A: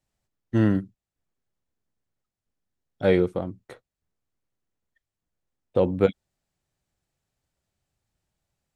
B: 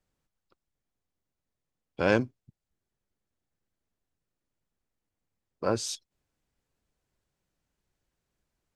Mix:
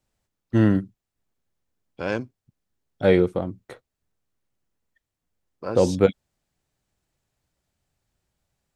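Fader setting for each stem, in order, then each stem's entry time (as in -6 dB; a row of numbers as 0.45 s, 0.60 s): +2.5 dB, -3.0 dB; 0.00 s, 0.00 s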